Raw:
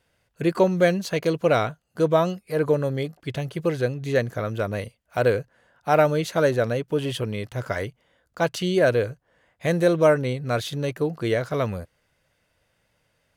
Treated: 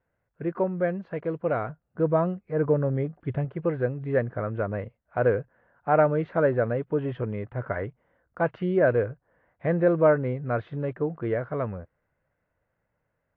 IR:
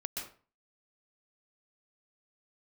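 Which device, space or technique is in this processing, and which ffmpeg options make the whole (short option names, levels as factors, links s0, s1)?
action camera in a waterproof case: -filter_complex "[0:a]asettb=1/sr,asplit=3[s0][s1][s2];[s0]atrim=end=1.694[s3];[s1]atrim=start=1.69:end=3.45,asetpts=PTS-STARTPTS,afade=t=in:d=0.004:c=qsin,afade=t=out:st=1.756:d=0.004:c=qsin,lowshelf=f=300:g=6[s4];[s2]atrim=start=3.446[s5];[s3][s4]acrossfade=d=0.004:c1=hsin:c2=qsin[s6];[s6][s5]acrossfade=d=0.004:c1=qsin:c2=hsin,lowpass=f=1800:w=0.5412,lowpass=f=1800:w=1.3066,dynaudnorm=f=790:g=7:m=4.47,volume=0.447" -ar 24000 -c:a aac -b:a 48k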